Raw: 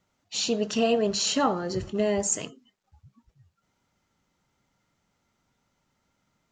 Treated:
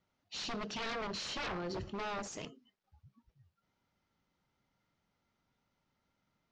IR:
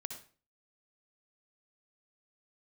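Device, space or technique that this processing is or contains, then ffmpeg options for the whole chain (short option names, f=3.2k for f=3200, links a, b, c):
synthesiser wavefolder: -af "aeval=exprs='0.0473*(abs(mod(val(0)/0.0473+3,4)-2)-1)':c=same,lowpass=f=5.5k:w=0.5412,lowpass=f=5.5k:w=1.3066,volume=-7dB"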